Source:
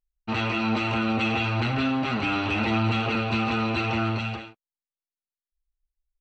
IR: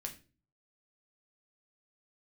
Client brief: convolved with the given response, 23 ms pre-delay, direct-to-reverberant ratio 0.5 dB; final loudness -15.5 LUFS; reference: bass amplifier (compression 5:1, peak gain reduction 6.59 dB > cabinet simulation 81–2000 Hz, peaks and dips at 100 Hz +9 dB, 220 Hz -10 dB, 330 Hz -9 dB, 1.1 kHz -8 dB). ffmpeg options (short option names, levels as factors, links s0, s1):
-filter_complex "[0:a]asplit=2[s0][s1];[1:a]atrim=start_sample=2205,adelay=23[s2];[s1][s2]afir=irnorm=-1:irlink=0,volume=1.19[s3];[s0][s3]amix=inputs=2:normalize=0,acompressor=threshold=0.0794:ratio=5,highpass=f=81:w=0.5412,highpass=f=81:w=1.3066,equalizer=f=100:t=q:w=4:g=9,equalizer=f=220:t=q:w=4:g=-10,equalizer=f=330:t=q:w=4:g=-9,equalizer=f=1100:t=q:w=4:g=-8,lowpass=f=2000:w=0.5412,lowpass=f=2000:w=1.3066,volume=5.01"